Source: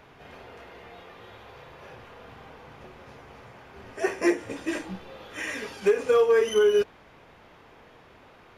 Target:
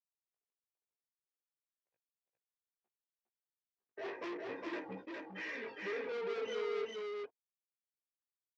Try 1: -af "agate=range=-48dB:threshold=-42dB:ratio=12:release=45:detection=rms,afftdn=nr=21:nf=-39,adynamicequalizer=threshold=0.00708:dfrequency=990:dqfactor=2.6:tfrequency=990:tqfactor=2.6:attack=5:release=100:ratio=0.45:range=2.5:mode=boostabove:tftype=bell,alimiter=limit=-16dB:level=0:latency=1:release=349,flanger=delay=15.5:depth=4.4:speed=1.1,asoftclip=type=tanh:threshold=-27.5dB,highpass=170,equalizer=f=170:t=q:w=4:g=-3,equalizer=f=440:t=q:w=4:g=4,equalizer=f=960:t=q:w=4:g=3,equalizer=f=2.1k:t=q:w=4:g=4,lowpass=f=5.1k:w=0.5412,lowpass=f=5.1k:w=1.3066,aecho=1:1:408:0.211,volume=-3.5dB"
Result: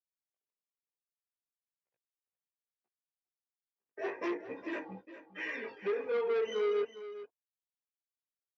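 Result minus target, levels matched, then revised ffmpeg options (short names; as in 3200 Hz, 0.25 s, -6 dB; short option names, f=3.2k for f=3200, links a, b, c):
echo-to-direct -11 dB; soft clip: distortion -6 dB
-af "agate=range=-48dB:threshold=-42dB:ratio=12:release=45:detection=rms,afftdn=nr=21:nf=-39,adynamicequalizer=threshold=0.00708:dfrequency=990:dqfactor=2.6:tfrequency=990:tqfactor=2.6:attack=5:release=100:ratio=0.45:range=2.5:mode=boostabove:tftype=bell,alimiter=limit=-16dB:level=0:latency=1:release=349,flanger=delay=15.5:depth=4.4:speed=1.1,asoftclip=type=tanh:threshold=-37.5dB,highpass=170,equalizer=f=170:t=q:w=4:g=-3,equalizer=f=440:t=q:w=4:g=4,equalizer=f=960:t=q:w=4:g=3,equalizer=f=2.1k:t=q:w=4:g=4,lowpass=f=5.1k:w=0.5412,lowpass=f=5.1k:w=1.3066,aecho=1:1:408:0.75,volume=-3.5dB"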